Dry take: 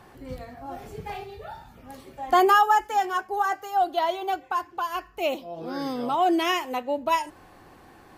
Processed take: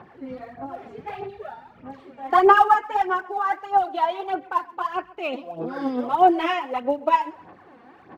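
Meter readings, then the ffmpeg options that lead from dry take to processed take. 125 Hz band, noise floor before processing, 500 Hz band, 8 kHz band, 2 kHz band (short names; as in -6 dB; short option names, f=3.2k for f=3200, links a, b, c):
n/a, -52 dBFS, +2.5 dB, under -10 dB, +1.5 dB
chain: -filter_complex "[0:a]highpass=150,lowpass=2.4k,aphaser=in_gain=1:out_gain=1:delay=4.3:decay=0.64:speed=1.6:type=sinusoidal,asplit=2[a][b];[b]aecho=0:1:131|262:0.0794|0.0246[c];[a][c]amix=inputs=2:normalize=0"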